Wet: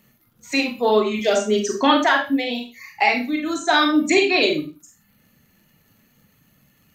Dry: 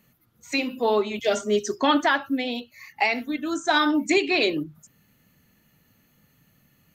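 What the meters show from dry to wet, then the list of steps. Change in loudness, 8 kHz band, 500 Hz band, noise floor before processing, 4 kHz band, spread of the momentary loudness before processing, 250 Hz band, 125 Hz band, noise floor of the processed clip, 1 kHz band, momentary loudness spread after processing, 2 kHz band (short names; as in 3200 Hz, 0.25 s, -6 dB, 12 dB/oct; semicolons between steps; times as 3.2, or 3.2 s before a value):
+4.5 dB, +5.0 dB, +4.5 dB, -64 dBFS, +4.5 dB, 8 LU, +4.0 dB, +4.0 dB, -61 dBFS, +4.5 dB, 9 LU, +4.0 dB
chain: reverb removal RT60 0.65 s; Schroeder reverb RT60 0.32 s, combs from 29 ms, DRR 2 dB; crackle 73/s -53 dBFS; gain +3 dB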